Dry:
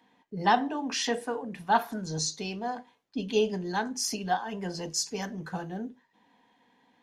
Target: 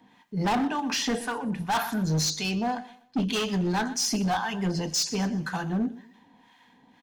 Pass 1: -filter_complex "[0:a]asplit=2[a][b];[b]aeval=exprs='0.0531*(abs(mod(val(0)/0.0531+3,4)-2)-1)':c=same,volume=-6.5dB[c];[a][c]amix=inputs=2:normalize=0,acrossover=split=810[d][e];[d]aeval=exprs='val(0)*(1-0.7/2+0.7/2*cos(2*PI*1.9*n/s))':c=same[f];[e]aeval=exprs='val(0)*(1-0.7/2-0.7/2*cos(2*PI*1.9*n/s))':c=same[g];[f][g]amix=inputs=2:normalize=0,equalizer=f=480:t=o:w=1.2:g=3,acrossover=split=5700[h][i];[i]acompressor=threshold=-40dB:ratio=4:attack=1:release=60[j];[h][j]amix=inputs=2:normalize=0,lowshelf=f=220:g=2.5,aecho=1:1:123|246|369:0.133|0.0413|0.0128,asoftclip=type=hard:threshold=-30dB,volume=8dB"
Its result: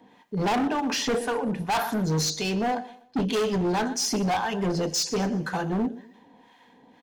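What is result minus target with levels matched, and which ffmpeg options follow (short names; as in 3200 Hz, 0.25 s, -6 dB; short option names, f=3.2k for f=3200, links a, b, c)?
500 Hz band +5.0 dB
-filter_complex "[0:a]asplit=2[a][b];[b]aeval=exprs='0.0531*(abs(mod(val(0)/0.0531+3,4)-2)-1)':c=same,volume=-6.5dB[c];[a][c]amix=inputs=2:normalize=0,acrossover=split=810[d][e];[d]aeval=exprs='val(0)*(1-0.7/2+0.7/2*cos(2*PI*1.9*n/s))':c=same[f];[e]aeval=exprs='val(0)*(1-0.7/2-0.7/2*cos(2*PI*1.9*n/s))':c=same[g];[f][g]amix=inputs=2:normalize=0,equalizer=f=480:t=o:w=1.2:g=-7,acrossover=split=5700[h][i];[i]acompressor=threshold=-40dB:ratio=4:attack=1:release=60[j];[h][j]amix=inputs=2:normalize=0,lowshelf=f=220:g=2.5,aecho=1:1:123|246|369:0.133|0.0413|0.0128,asoftclip=type=hard:threshold=-30dB,volume=8dB"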